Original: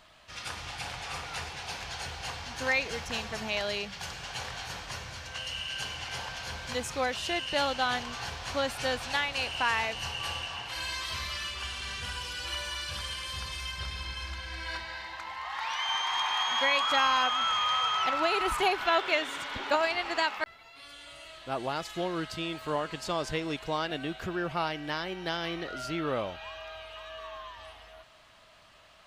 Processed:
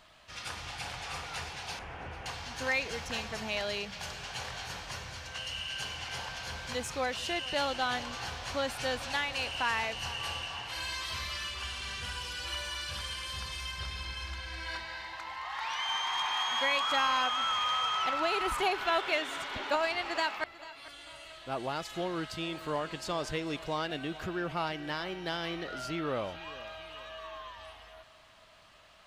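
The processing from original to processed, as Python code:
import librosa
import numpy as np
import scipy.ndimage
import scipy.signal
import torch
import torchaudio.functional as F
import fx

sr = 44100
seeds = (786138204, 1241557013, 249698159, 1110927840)

p1 = fx.delta_mod(x, sr, bps=16000, step_db=-45.0, at=(1.79, 2.26))
p2 = fx.echo_feedback(p1, sr, ms=442, feedback_pct=40, wet_db=-19.0)
p3 = 10.0 ** (-30.0 / 20.0) * np.tanh(p2 / 10.0 ** (-30.0 / 20.0))
p4 = p2 + F.gain(torch.from_numpy(p3), -7.0).numpy()
y = F.gain(torch.from_numpy(p4), -4.5).numpy()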